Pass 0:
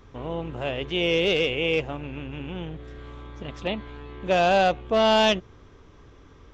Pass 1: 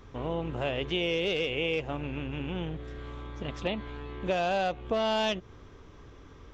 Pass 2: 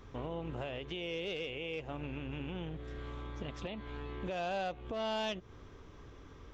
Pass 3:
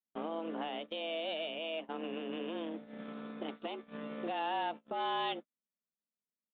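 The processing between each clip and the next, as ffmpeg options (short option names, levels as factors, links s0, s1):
-af "acompressor=threshold=0.0501:ratio=6"
-af "alimiter=level_in=1.58:limit=0.0631:level=0:latency=1:release=249,volume=0.631,volume=0.75"
-af "afreqshift=160,aresample=8000,aresample=44100,agate=range=0.00178:threshold=0.00794:ratio=16:detection=peak,volume=1.12"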